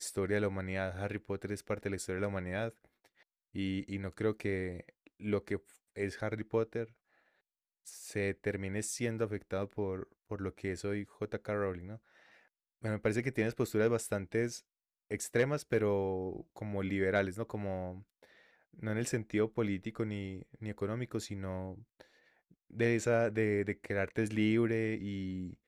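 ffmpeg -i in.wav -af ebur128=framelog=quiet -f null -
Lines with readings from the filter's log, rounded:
Integrated loudness:
  I:         -35.8 LUFS
  Threshold: -46.4 LUFS
Loudness range:
  LRA:         5.4 LU
  Threshold: -56.8 LUFS
  LRA low:   -39.3 LUFS
  LRA high:  -33.9 LUFS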